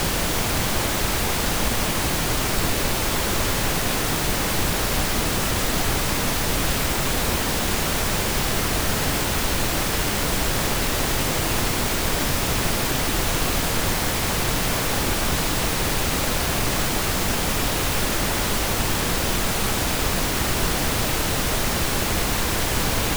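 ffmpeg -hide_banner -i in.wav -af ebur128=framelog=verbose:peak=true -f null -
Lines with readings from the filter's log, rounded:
Integrated loudness:
  I:         -21.9 LUFS
  Threshold: -31.9 LUFS
Loudness range:
  LRA:         0.1 LU
  Threshold: -41.9 LUFS
  LRA low:   -21.9 LUFS
  LRA high:  -21.8 LUFS
True peak:
  Peak:       -7.9 dBFS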